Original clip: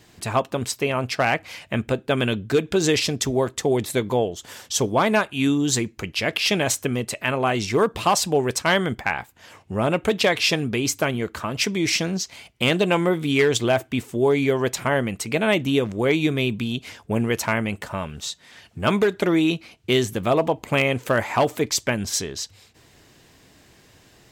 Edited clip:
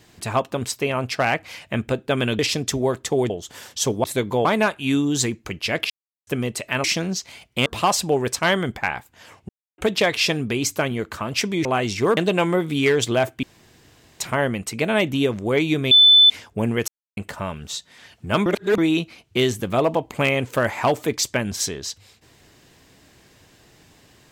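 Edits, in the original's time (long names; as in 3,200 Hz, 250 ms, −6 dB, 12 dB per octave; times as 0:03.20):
0:02.39–0:02.92: remove
0:03.83–0:04.24: move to 0:04.98
0:06.43–0:06.80: silence
0:07.37–0:07.89: swap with 0:11.88–0:12.70
0:09.72–0:10.01: silence
0:13.96–0:14.73: fill with room tone
0:16.44–0:16.83: beep over 3,510 Hz −8 dBFS
0:17.41–0:17.70: silence
0:18.99–0:19.31: reverse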